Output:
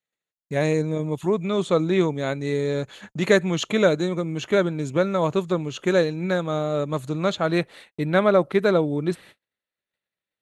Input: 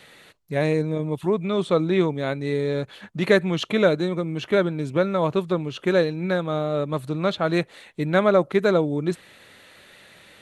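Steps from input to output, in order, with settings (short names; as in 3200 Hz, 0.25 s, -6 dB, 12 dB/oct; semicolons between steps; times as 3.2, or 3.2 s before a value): gate -44 dBFS, range -42 dB; bell 6800 Hz +13.5 dB 0.24 oct, from 7.46 s -4 dB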